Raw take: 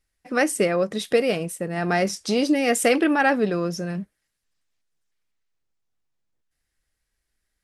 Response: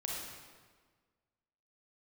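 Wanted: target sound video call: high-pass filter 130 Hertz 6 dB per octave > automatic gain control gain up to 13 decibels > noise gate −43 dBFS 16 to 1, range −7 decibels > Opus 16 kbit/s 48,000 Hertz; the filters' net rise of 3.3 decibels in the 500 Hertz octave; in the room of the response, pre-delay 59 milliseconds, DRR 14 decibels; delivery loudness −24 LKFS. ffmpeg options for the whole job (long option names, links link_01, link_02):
-filter_complex "[0:a]equalizer=frequency=500:width_type=o:gain=4,asplit=2[link_01][link_02];[1:a]atrim=start_sample=2205,adelay=59[link_03];[link_02][link_03]afir=irnorm=-1:irlink=0,volume=-16dB[link_04];[link_01][link_04]amix=inputs=2:normalize=0,highpass=frequency=130:poles=1,dynaudnorm=maxgain=13dB,agate=range=-7dB:threshold=-43dB:ratio=16,volume=-3dB" -ar 48000 -c:a libopus -b:a 16k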